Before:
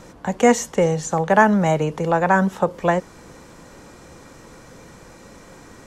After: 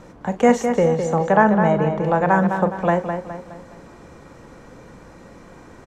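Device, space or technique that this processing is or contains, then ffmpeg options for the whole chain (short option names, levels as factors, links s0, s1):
through cloth: -filter_complex "[0:a]asettb=1/sr,asplit=3[s0][s1][s2];[s0]atrim=end=1.324[s3];[s1]atrim=start=1.32:end=2.04,asetpts=PTS-STARTPTS,afade=t=in:d=0.004:c=qsin,afade=t=out:st=0.716:d=0.004:c=qsin,aemphasis=mode=reproduction:type=50kf[s4];[s2]atrim=start=2.036[s5];[s3][s4]acrossfade=d=0.004:c1=hsin:c2=qsin[s6];[s6][s5]acrossfade=d=0.004:c1=qsin:c2=hsin,highshelf=f=3400:g=-11,asplit=2[s7][s8];[s8]adelay=41,volume=0.224[s9];[s7][s9]amix=inputs=2:normalize=0,asplit=2[s10][s11];[s11]adelay=208,lowpass=f=4400:p=1,volume=0.447,asplit=2[s12][s13];[s13]adelay=208,lowpass=f=4400:p=1,volume=0.43,asplit=2[s14][s15];[s15]adelay=208,lowpass=f=4400:p=1,volume=0.43,asplit=2[s16][s17];[s17]adelay=208,lowpass=f=4400:p=1,volume=0.43,asplit=2[s18][s19];[s19]adelay=208,lowpass=f=4400:p=1,volume=0.43[s20];[s10][s12][s14][s16][s18][s20]amix=inputs=6:normalize=0"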